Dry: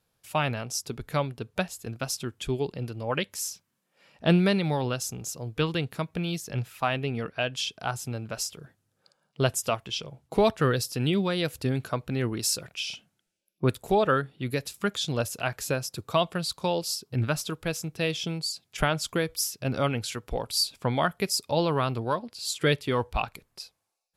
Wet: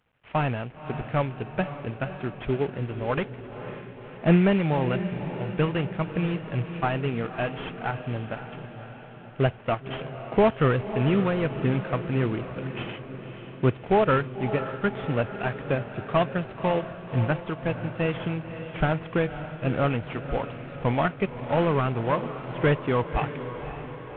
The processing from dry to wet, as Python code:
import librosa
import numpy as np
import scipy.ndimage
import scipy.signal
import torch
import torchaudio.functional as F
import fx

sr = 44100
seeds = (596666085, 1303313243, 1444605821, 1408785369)

y = fx.cvsd(x, sr, bps=16000)
y = fx.echo_diffused(y, sr, ms=549, feedback_pct=58, wet_db=-10.5)
y = y * librosa.db_to_amplitude(3.0)